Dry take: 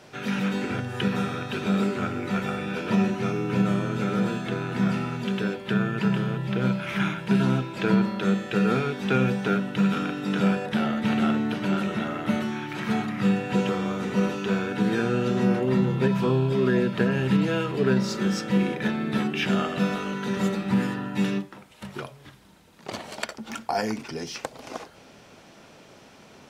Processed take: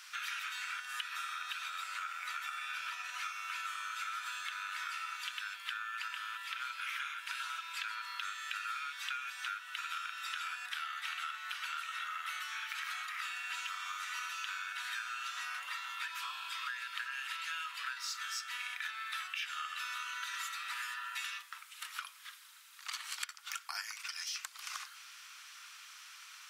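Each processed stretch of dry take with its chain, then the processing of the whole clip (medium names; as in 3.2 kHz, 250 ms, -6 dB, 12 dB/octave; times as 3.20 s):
1.32–3.20 s: peaking EQ 530 Hz +8 dB 0.97 oct + compression 2.5:1, threshold -25 dBFS
whole clip: elliptic high-pass 1.2 kHz, stop band 70 dB; treble shelf 7.1 kHz +9 dB; compression, threshold -39 dBFS; trim +1.5 dB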